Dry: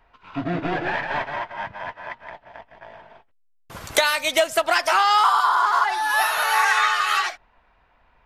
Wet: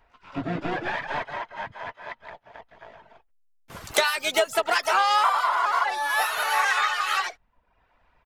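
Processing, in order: reverb removal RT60 0.62 s; harmoniser -7 st -14 dB, +5 st -17 dB, +12 st -18 dB; gain -3 dB

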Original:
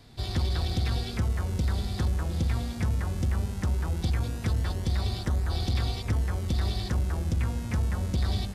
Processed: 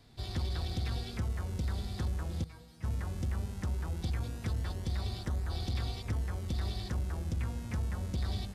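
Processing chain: 2.44–2.84 resonator 160 Hz, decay 0.2 s, harmonics all, mix 100%; gain -7 dB

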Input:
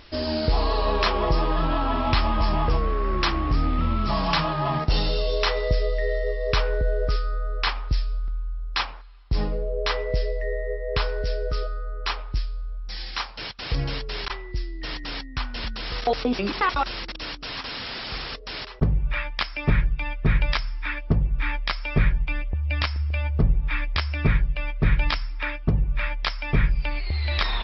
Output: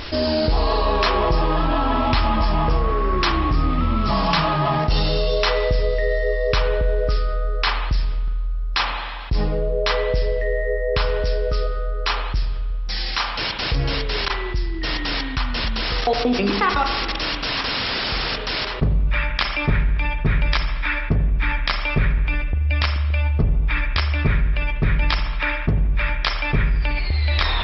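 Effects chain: spring tank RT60 1.2 s, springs 40/45 ms, chirp 70 ms, DRR 8 dB; fast leveller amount 50%

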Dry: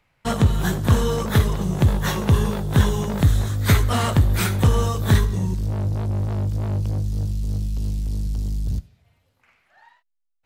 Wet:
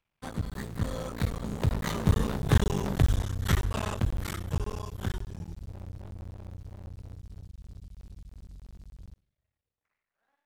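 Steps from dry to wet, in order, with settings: cycle switcher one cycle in 3, muted; Doppler pass-by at 2.57, 38 m/s, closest 27 m; Doppler distortion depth 0.12 ms; gain -3.5 dB

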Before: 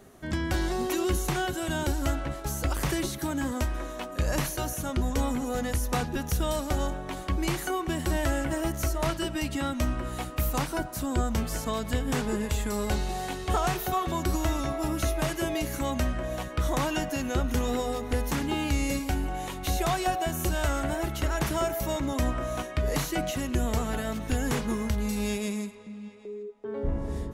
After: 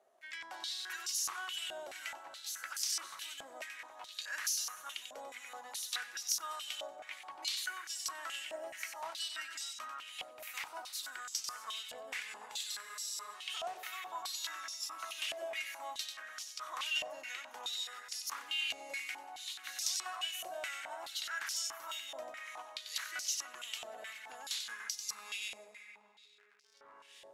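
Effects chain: differentiator; crackle 71/s -49 dBFS; on a send: split-band echo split 2200 Hz, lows 0.29 s, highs 93 ms, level -7 dB; on the sum: spectral freeze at 12.84, 0.51 s; stepped band-pass 4.7 Hz 640–5300 Hz; gain +12 dB

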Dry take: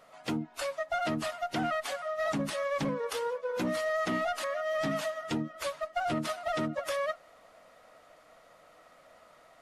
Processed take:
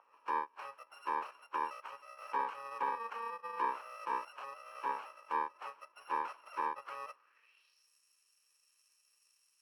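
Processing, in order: FFT order left unsorted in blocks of 64 samples; band-pass sweep 950 Hz -> 7100 Hz, 7.12–7.9; three-band isolator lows -23 dB, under 430 Hz, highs -19 dB, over 2700 Hz; gain +12 dB

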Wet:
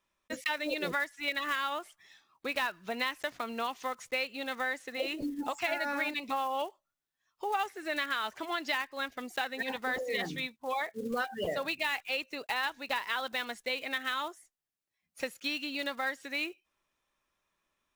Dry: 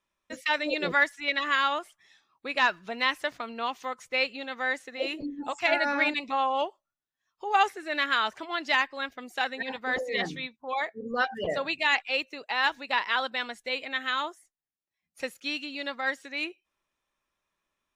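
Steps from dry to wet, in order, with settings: block floating point 5-bit; compressor 4:1, threshold -32 dBFS, peak gain reduction 12.5 dB; gain +1.5 dB

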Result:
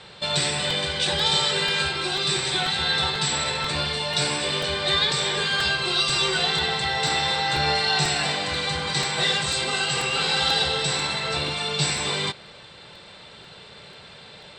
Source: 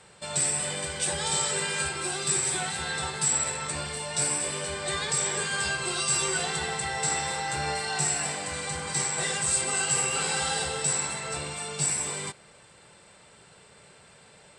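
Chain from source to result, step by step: bell 3800 Hz +12.5 dB 0.72 oct; vocal rider 2 s; air absorption 130 m; crackling interface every 0.49 s, samples 128, repeat, from 0.7; gain +5.5 dB

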